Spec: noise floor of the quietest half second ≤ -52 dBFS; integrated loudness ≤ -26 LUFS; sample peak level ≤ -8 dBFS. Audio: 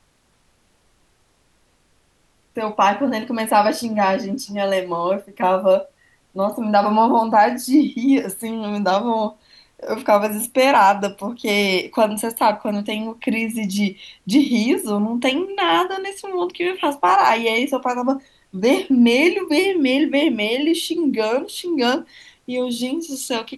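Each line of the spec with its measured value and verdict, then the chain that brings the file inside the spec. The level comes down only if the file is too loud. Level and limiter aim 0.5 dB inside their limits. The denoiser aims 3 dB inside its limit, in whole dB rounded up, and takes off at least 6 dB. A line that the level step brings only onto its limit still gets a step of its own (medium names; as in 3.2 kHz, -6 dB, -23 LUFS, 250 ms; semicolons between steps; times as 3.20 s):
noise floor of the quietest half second -61 dBFS: pass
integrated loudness -19.0 LUFS: fail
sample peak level -4.0 dBFS: fail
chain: trim -7.5 dB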